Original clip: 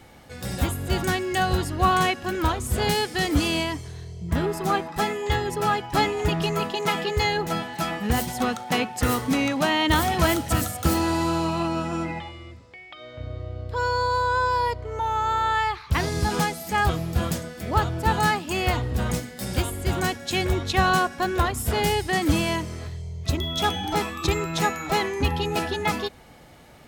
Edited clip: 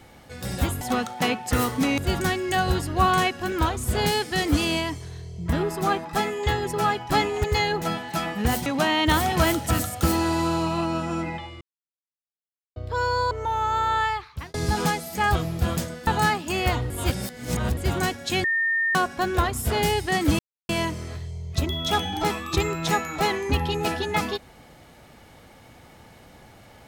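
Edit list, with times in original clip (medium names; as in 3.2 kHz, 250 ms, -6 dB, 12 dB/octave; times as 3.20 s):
6.27–7.09 s: delete
8.31–9.48 s: move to 0.81 s
12.43–13.58 s: mute
14.13–14.85 s: delete
15.54–16.08 s: fade out
17.61–18.08 s: delete
18.91–19.78 s: reverse
20.45–20.96 s: bleep 1.82 kHz -20 dBFS
22.40 s: insert silence 0.30 s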